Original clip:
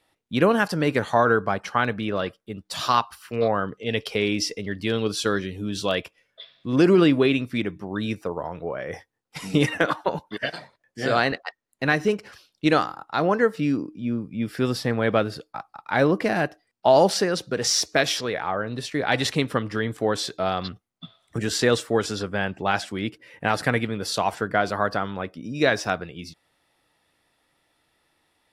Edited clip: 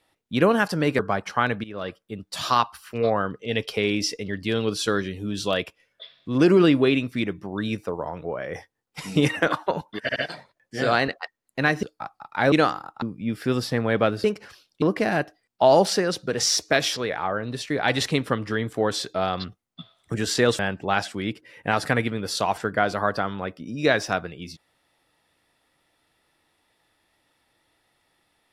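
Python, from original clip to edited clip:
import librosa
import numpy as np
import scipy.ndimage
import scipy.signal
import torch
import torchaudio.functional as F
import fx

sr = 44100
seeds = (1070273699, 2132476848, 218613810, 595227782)

y = fx.edit(x, sr, fx.cut(start_s=0.99, length_s=0.38),
    fx.fade_in_from(start_s=2.02, length_s=0.4, floor_db=-17.0),
    fx.stutter(start_s=10.4, slice_s=0.07, count=3),
    fx.swap(start_s=12.07, length_s=0.58, other_s=15.37, other_length_s=0.69),
    fx.cut(start_s=13.15, length_s=1.0),
    fx.cut(start_s=21.83, length_s=0.53), tone=tone)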